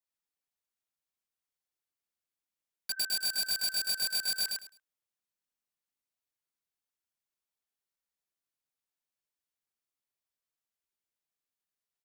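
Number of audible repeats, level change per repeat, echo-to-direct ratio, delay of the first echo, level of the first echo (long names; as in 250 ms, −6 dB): 3, −14.0 dB, −3.0 dB, 105 ms, −3.0 dB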